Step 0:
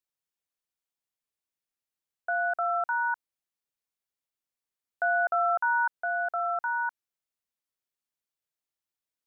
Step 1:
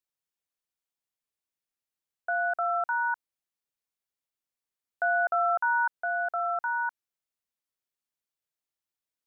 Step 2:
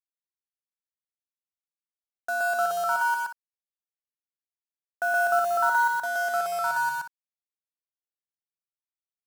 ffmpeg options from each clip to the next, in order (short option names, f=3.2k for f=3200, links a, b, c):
-af anull
-af "acrusher=bits=5:mix=0:aa=0.5,aecho=1:1:122.4|183.7:1|0.282"